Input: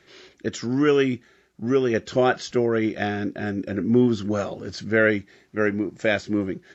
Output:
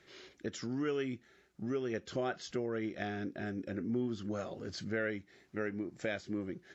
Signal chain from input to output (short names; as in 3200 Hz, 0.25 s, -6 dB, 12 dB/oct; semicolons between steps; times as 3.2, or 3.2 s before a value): compressor 2:1, threshold -33 dBFS, peak gain reduction 11 dB; gain -6.5 dB